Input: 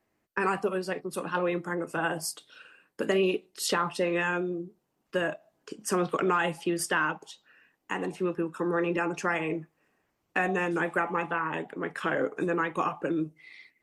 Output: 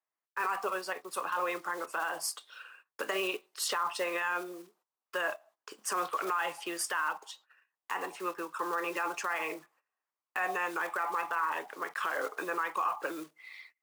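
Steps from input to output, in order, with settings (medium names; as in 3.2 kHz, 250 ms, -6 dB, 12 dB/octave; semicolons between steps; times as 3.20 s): block-companded coder 5-bit; gate -57 dBFS, range -19 dB; high-pass 670 Hz 12 dB/octave; peaking EQ 1.1 kHz +7.5 dB 0.74 oct; peak limiter -22.5 dBFS, peak gain reduction 11.5 dB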